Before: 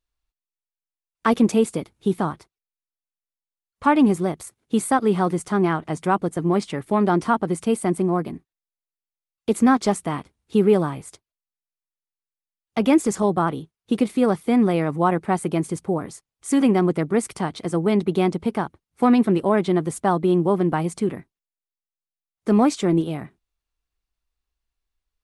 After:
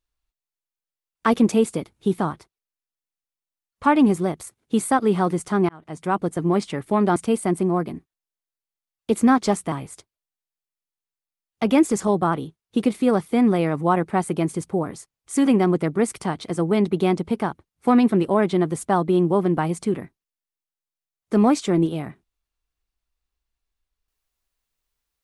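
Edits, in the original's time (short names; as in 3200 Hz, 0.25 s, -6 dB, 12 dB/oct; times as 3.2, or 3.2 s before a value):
5.69–6.25 fade in
7.16–7.55 cut
10.11–10.87 cut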